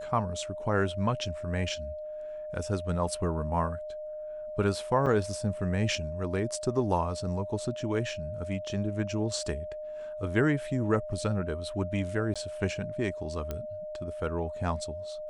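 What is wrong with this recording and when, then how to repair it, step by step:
whine 610 Hz -36 dBFS
5.06–5.07 s: dropout 5.3 ms
12.34–12.36 s: dropout 16 ms
13.51 s: pop -20 dBFS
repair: de-click; band-stop 610 Hz, Q 30; interpolate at 5.06 s, 5.3 ms; interpolate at 12.34 s, 16 ms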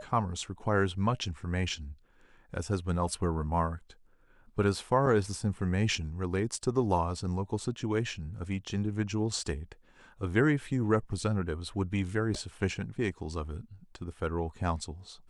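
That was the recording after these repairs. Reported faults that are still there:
nothing left

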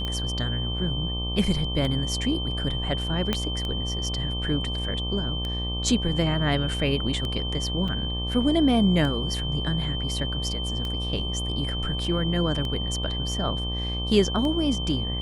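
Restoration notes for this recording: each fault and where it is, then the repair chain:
buzz 60 Hz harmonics 20 -30 dBFS
tick 33 1/3 rpm -18 dBFS
whine 3.1 kHz -31 dBFS
3.33 s: pop -10 dBFS
7.88 s: dropout 5 ms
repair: de-click; band-stop 3.1 kHz, Q 30; de-hum 60 Hz, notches 20; interpolate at 7.88 s, 5 ms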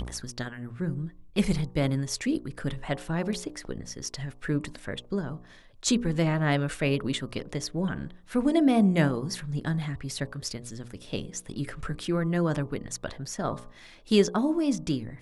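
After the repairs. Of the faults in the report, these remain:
3.33 s: pop

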